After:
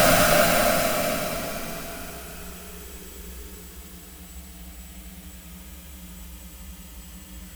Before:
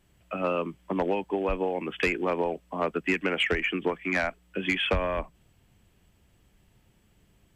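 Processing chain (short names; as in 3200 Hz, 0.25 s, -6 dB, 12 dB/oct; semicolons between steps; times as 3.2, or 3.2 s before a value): block floating point 3-bit; high shelf 6500 Hz +9 dB; in parallel at -6 dB: sine folder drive 16 dB, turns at -12 dBFS; on the sum: Paulstretch 36×, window 0.10 s, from 4.29; gain +4.5 dB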